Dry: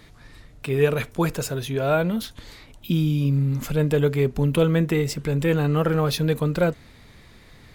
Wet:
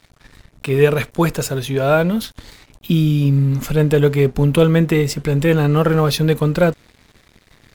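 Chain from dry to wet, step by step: crossover distortion -47.5 dBFS; gain +6.5 dB

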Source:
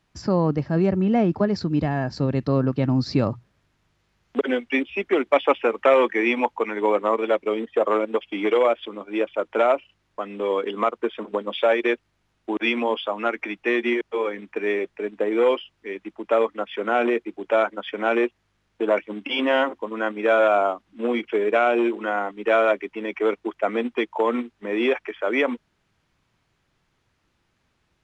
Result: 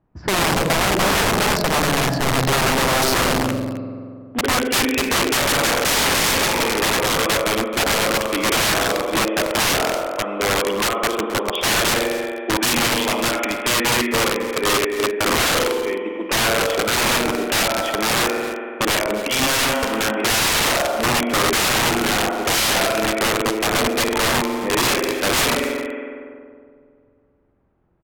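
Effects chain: spring tank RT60 2.4 s, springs 46 ms, chirp 30 ms, DRR 3.5 dB; wrapped overs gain 18 dB; low-pass opened by the level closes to 800 Hz, open at -24.5 dBFS; on a send: echo 0.265 s -15.5 dB; on the sum: gain +5 dB

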